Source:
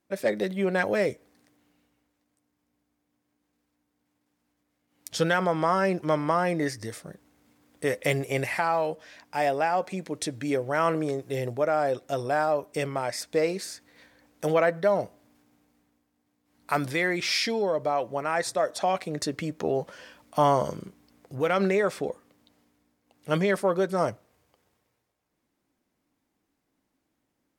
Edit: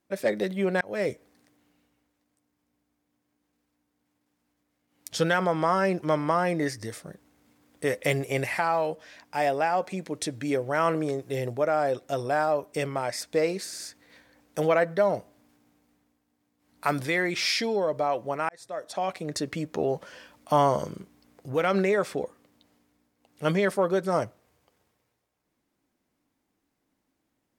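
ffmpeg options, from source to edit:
-filter_complex "[0:a]asplit=5[a][b][c][d][e];[a]atrim=end=0.81,asetpts=PTS-STARTPTS,afade=t=out:st=0.806:d=0.004:c=hsin[f];[b]atrim=start=0.81:end=13.732,asetpts=PTS-STARTPTS,afade=t=in:d=0.29[g];[c]atrim=start=13.658:end=13.732[h];[d]atrim=start=13.658:end=18.35,asetpts=PTS-STARTPTS,afade=t=out:st=4.688:d=0.004:c=hsin[i];[e]atrim=start=18.35,asetpts=PTS-STARTPTS,afade=t=in:d=1.18:c=qsin[j];[f][g]concat=n=2:v=0:a=1[k];[k][h]acrossfade=d=0.004:c1=hsin:c2=hsin[l];[i][j]concat=n=2:v=0:a=1[m];[l][m]acrossfade=d=0.004:c1=hsin:c2=hsin"

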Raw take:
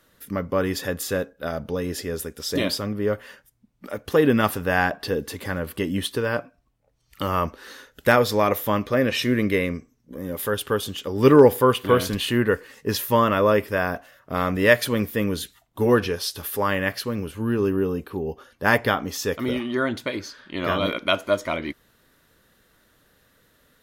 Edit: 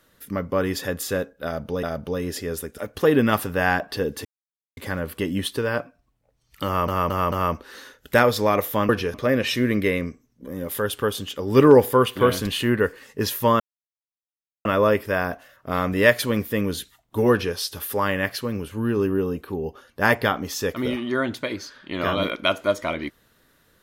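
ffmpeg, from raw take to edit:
-filter_complex "[0:a]asplit=10[a][b][c][d][e][f][g][h][i][j];[a]atrim=end=1.832[k];[b]atrim=start=1.448:end=2.402[l];[c]atrim=start=3.888:end=5.36,asetpts=PTS-STARTPTS,afade=t=out:st=1.468:d=0.004:c=hsin,apad=pad_dur=0.52[m];[d]atrim=start=5.36:end=7.472,asetpts=PTS-STARTPTS,afade=t=in:d=0.004:c=hsin[n];[e]atrim=start=7.248:end=7.472[o];[f]atrim=start=7.248:end=7.472[p];[g]atrim=start=7.248:end=8.822[q];[h]atrim=start=15.938:end=16.192[r];[i]atrim=start=8.818:end=13.28,asetpts=PTS-STARTPTS,afade=t=out:st=4.458:d=0.004:c=hsin,apad=pad_dur=1.05[s];[j]atrim=start=13.28,asetpts=PTS-STARTPTS,afade=t=in:d=0.004:c=hsin[t];[k][l]acrossfade=d=0.004:c1=hsin:c2=hsin[u];[m][n]concat=n=2:v=0:a=1[v];[u][v]acrossfade=d=0.004:c1=hsin:c2=hsin[w];[w][o]acrossfade=d=0.004:c1=hsin:c2=hsin[x];[x][p]acrossfade=d=0.004:c1=hsin:c2=hsin[y];[y][q]acrossfade=d=0.004:c1=hsin:c2=hsin[z];[z][r]acrossfade=d=0.004:c1=hsin:c2=hsin[aa];[s][t]concat=n=2:v=0:a=1[ab];[aa][ab]acrossfade=d=0.004:c1=hsin:c2=hsin"

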